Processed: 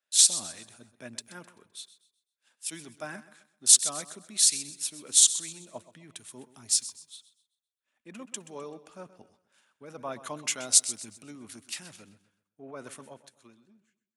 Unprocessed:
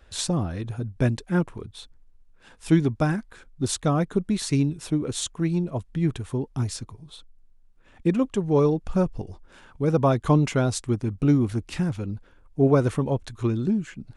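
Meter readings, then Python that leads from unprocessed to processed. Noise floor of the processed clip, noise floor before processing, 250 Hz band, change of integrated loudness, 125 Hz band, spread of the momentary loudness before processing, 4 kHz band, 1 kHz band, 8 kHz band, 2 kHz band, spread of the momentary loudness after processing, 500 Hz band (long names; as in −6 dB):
below −85 dBFS, −55 dBFS, −24.5 dB, +1.5 dB, −30.5 dB, 12 LU, +7.0 dB, −13.5 dB, +13.0 dB, −7.5 dB, 22 LU, −19.0 dB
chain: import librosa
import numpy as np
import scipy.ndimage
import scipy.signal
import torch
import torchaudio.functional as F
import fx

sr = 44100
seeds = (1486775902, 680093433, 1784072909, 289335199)

p1 = fx.fade_out_tail(x, sr, length_s=2.17)
p2 = fx.over_compress(p1, sr, threshold_db=-25.0, ratio=-0.5)
p3 = p1 + (p2 * librosa.db_to_amplitude(0.5))
p4 = scipy.signal.sosfilt(scipy.signal.butter(2, 77.0, 'highpass', fs=sr, output='sos'), p3)
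p5 = np.diff(p4, prepend=0.0)
p6 = fx.small_body(p5, sr, hz=(230.0, 610.0), ring_ms=45, db=7)
p7 = p6 + fx.echo_feedback(p6, sr, ms=129, feedback_pct=50, wet_db=-13.5, dry=0)
p8 = fx.band_widen(p7, sr, depth_pct=70)
y = p8 * librosa.db_to_amplitude(-1.5)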